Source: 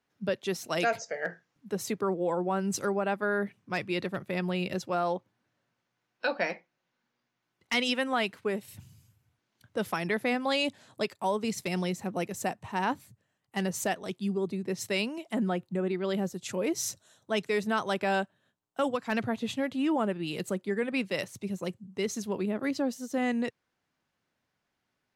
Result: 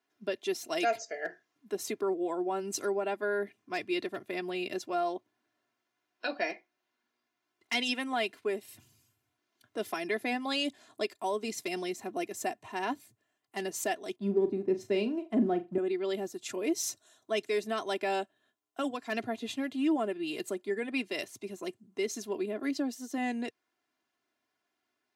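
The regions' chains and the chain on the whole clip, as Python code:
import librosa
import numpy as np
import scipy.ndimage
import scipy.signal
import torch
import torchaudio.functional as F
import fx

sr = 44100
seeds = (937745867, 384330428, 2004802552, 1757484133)

y = fx.chain(x, sr, fx.law_mismatch(coded='A'),
    fx.tilt_eq(slope=-4.5),
    fx.room_flutter(wall_m=6.9, rt60_s=0.22), at=(14.16, 15.78))
y = scipy.signal.sosfilt(scipy.signal.butter(2, 200.0, 'highpass', fs=sr, output='sos'), y)
y = y + 0.71 * np.pad(y, (int(2.9 * sr / 1000.0), 0))[:len(y)]
y = fx.dynamic_eq(y, sr, hz=1200.0, q=1.7, threshold_db=-45.0, ratio=4.0, max_db=-6)
y = y * 10.0 ** (-3.0 / 20.0)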